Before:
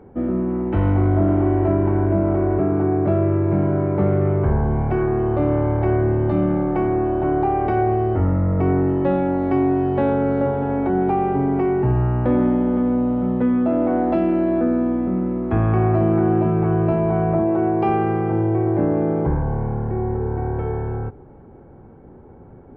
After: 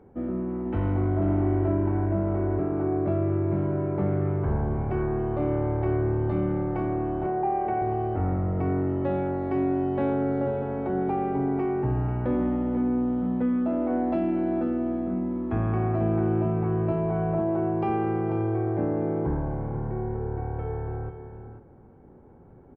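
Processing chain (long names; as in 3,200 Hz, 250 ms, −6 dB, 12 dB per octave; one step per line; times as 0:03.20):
0:07.26–0:07.82: loudspeaker in its box 170–2,700 Hz, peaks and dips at 290 Hz −9 dB, 750 Hz +4 dB, 1,300 Hz −7 dB
on a send: single-tap delay 491 ms −9.5 dB
on the sum: level −8 dB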